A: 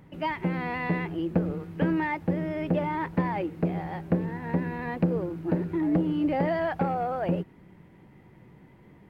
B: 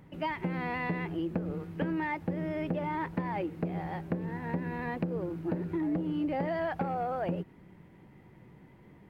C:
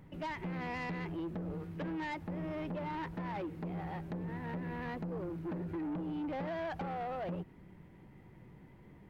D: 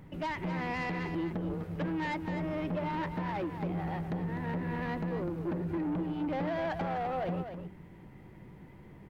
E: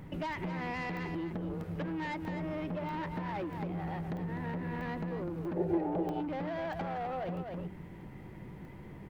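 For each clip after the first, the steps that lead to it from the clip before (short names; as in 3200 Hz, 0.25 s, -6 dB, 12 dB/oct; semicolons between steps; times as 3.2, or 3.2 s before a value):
compressor, threshold -26 dBFS, peak gain reduction 8.5 dB; gain -2 dB
low shelf 68 Hz +8.5 dB; soft clip -32 dBFS, distortion -10 dB; gain -2.5 dB
echo 0.252 s -8.5 dB; gain +4.5 dB
compressor 5:1, threshold -39 dBFS, peak gain reduction 8 dB; spectral gain 5.57–6.2, 340–900 Hz +12 dB; crackling interface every 0.64 s, samples 64, zero, from 0.33; gain +4 dB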